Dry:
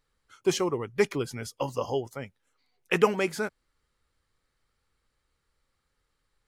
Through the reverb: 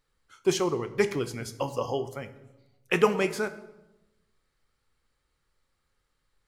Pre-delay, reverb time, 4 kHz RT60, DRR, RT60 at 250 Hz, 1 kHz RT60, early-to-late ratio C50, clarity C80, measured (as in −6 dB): 5 ms, 1.0 s, 0.70 s, 10.0 dB, 1.2 s, 0.90 s, 14.0 dB, 16.0 dB